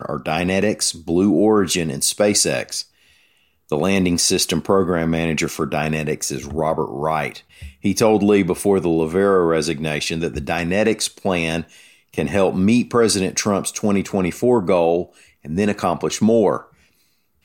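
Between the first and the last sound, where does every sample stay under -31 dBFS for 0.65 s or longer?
2.82–3.69

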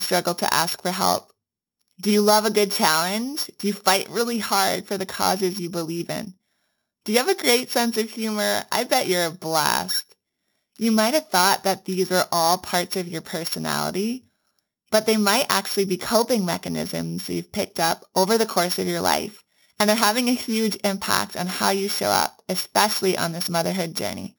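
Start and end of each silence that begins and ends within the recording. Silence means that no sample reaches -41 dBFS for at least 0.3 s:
1.3–1.99
6.31–7.06
10.12–10.76
14.18–14.92
19.39–19.79

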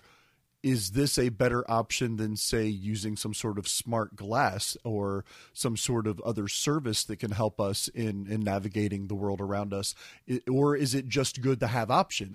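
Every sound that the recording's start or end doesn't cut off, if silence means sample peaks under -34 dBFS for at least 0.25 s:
0.64–5.21
5.58–9.91

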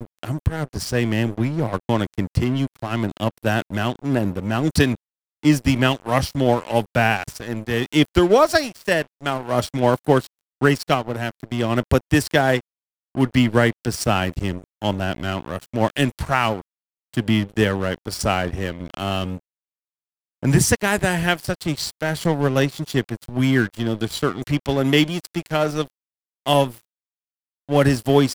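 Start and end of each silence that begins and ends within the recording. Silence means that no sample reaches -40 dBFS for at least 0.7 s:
19.38–20.43
26.81–27.69

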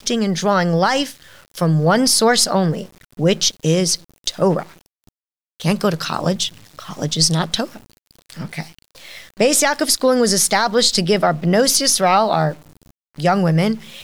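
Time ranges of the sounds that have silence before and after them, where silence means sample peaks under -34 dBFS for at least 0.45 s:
5.6–12.56

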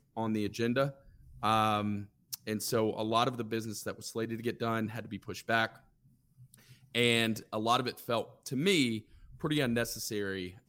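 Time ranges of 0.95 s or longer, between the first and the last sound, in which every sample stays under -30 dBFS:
5.66–6.95

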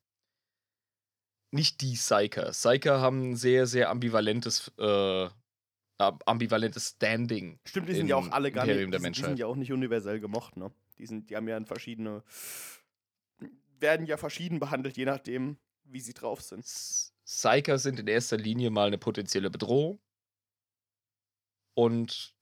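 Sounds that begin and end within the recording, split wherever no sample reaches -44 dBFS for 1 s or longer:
1.53–19.95

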